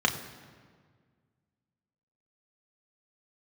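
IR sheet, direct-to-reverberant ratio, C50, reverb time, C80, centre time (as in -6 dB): 2.5 dB, 10.5 dB, 1.7 s, 11.5 dB, 20 ms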